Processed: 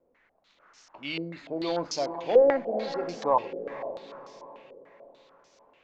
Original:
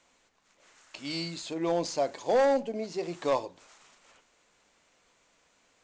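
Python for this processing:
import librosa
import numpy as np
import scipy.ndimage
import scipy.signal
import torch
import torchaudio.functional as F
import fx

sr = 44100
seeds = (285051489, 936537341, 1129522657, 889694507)

y = fx.echo_diffused(x, sr, ms=483, feedback_pct=46, wet_db=-10)
y = fx.filter_held_lowpass(y, sr, hz=6.8, low_hz=470.0, high_hz=5500.0)
y = y * librosa.db_to_amplitude(-2.0)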